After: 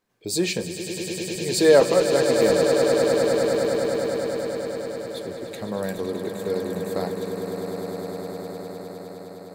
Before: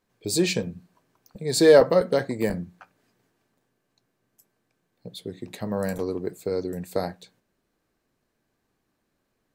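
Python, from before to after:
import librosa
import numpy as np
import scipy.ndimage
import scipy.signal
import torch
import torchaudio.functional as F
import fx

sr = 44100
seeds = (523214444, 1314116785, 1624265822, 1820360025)

y = fx.low_shelf(x, sr, hz=140.0, db=-6.5)
y = fx.echo_swell(y, sr, ms=102, loudest=8, wet_db=-10.0)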